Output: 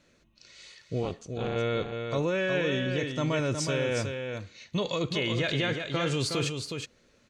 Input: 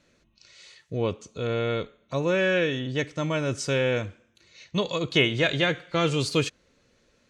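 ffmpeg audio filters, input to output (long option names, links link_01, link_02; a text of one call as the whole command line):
ffmpeg -i in.wav -filter_complex "[0:a]asettb=1/sr,asplit=3[link_01][link_02][link_03];[link_01]atrim=end=1.034[link_04];[link_02]atrim=start=1.03:end=1.56,asetpts=PTS-STARTPTS,afade=type=in:duration=0.004:curve=qsin,afade=type=out:start_time=0.526:duration=0.004:curve=qsin,tremolo=f=260:d=0.889[link_05];[link_03]atrim=start=1.556[link_06];[link_04][link_05]acrossfade=duration=0.004:curve1=hsin:curve2=qsin[link_07];[link_07][link_06]acrossfade=duration=0.004:curve1=qsin:curve2=hsin,alimiter=limit=-20.5dB:level=0:latency=1:release=24,aecho=1:1:365:0.501" out.wav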